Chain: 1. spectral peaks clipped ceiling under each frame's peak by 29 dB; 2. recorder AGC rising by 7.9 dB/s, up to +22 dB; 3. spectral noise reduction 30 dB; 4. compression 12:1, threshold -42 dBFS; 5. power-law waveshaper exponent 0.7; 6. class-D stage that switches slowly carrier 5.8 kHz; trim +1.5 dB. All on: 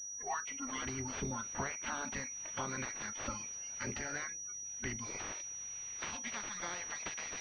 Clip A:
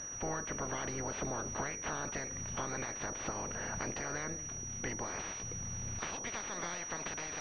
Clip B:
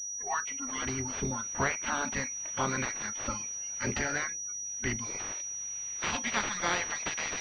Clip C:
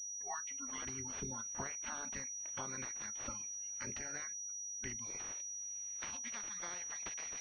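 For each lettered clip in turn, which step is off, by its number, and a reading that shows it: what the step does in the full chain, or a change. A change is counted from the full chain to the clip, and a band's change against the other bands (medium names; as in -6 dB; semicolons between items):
3, 500 Hz band +4.5 dB; 4, mean gain reduction 6.5 dB; 5, 8 kHz band +6.5 dB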